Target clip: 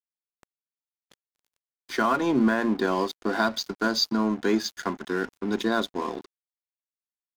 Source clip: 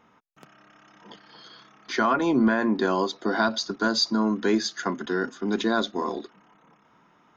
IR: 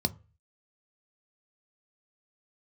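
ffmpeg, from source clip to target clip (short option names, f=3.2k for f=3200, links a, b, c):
-af "aeval=exprs='sgn(val(0))*max(abs(val(0))-0.0119,0)':c=same"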